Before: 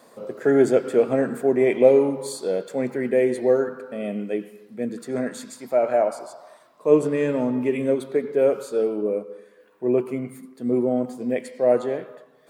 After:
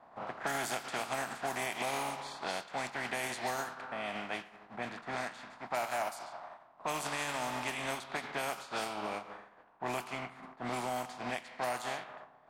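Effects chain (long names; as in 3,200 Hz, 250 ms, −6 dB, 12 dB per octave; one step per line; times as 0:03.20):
compressing power law on the bin magnitudes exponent 0.46
brickwall limiter −10 dBFS, peak gain reduction 10.5 dB
low shelf with overshoot 590 Hz −6.5 dB, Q 3
low-pass that shuts in the quiet parts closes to 910 Hz, open at −19.5 dBFS
downward compressor 2.5 to 1, threshold −39 dBFS, peak gain reduction 15 dB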